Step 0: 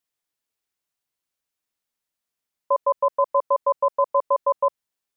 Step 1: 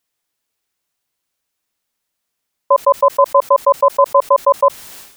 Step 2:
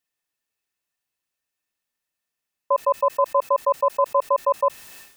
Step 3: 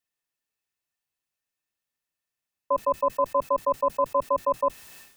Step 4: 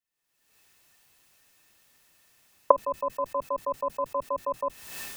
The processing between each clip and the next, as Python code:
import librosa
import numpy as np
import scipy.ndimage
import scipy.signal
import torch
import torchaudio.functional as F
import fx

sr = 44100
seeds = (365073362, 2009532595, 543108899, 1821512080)

y1 = fx.sustainer(x, sr, db_per_s=82.0)
y1 = F.gain(torch.from_numpy(y1), 9.0).numpy()
y2 = fx.small_body(y1, sr, hz=(1800.0, 2600.0), ring_ms=95, db=15)
y2 = F.gain(torch.from_numpy(y2), -8.5).numpy()
y3 = fx.octave_divider(y2, sr, octaves=1, level_db=-4.0)
y3 = F.gain(torch.from_numpy(y3), -4.0).numpy()
y4 = fx.recorder_agc(y3, sr, target_db=-19.5, rise_db_per_s=52.0, max_gain_db=30)
y4 = F.gain(torch.from_numpy(y4), -6.0).numpy()